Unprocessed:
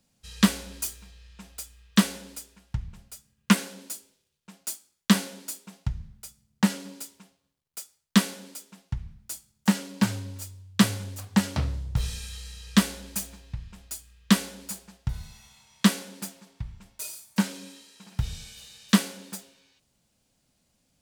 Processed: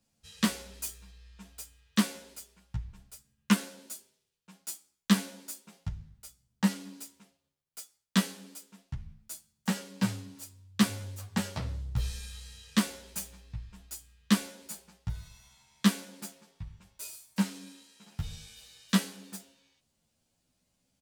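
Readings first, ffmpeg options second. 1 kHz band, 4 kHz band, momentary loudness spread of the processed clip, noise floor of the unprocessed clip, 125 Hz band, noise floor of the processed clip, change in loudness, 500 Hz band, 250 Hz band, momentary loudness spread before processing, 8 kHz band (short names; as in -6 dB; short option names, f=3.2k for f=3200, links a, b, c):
-5.5 dB, -5.5 dB, 19 LU, -73 dBFS, -5.5 dB, -79 dBFS, -5.0 dB, -5.5 dB, -5.0 dB, 18 LU, -5.5 dB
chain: -filter_complex "[0:a]asplit=2[a][b];[b]adelay=11.2,afreqshift=0.56[c];[a][c]amix=inputs=2:normalize=1,volume=-2.5dB"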